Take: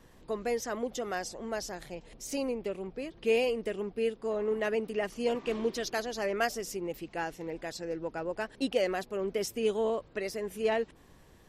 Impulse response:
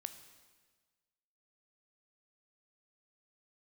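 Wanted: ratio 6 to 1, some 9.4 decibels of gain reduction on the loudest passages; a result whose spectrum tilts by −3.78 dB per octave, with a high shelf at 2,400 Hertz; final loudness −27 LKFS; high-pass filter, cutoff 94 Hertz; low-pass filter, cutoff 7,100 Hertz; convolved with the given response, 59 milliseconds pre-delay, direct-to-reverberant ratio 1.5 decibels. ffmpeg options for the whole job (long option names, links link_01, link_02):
-filter_complex "[0:a]highpass=94,lowpass=7100,highshelf=frequency=2400:gain=-4,acompressor=threshold=-33dB:ratio=6,asplit=2[link_01][link_02];[1:a]atrim=start_sample=2205,adelay=59[link_03];[link_02][link_03]afir=irnorm=-1:irlink=0,volume=2dB[link_04];[link_01][link_04]amix=inputs=2:normalize=0,volume=9.5dB"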